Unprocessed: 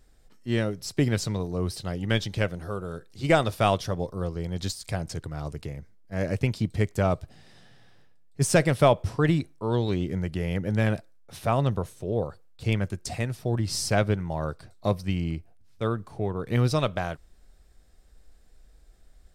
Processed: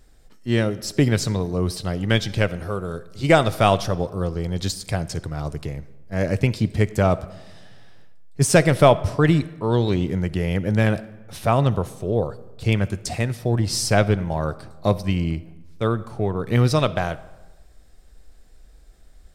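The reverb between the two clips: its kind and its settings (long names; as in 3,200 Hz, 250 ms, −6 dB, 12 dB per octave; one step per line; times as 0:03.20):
comb and all-pass reverb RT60 1.2 s, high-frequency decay 0.6×, pre-delay 15 ms, DRR 17 dB
level +5.5 dB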